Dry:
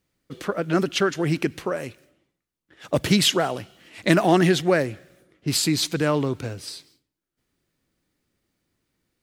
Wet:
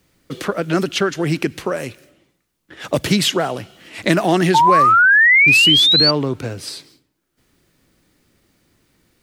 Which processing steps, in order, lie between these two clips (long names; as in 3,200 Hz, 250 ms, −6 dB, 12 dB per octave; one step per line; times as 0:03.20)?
sound drawn into the spectrogram rise, 0:04.54–0:06.11, 870–4,700 Hz −13 dBFS
multiband upward and downward compressor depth 40%
level +2.5 dB